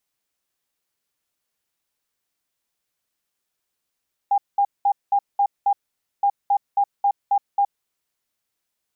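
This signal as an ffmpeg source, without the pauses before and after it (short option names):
-f lavfi -i "aevalsrc='0.188*sin(2*PI*805*t)*clip(min(mod(mod(t,1.92),0.27),0.07-mod(mod(t,1.92),0.27))/0.005,0,1)*lt(mod(t,1.92),1.62)':d=3.84:s=44100"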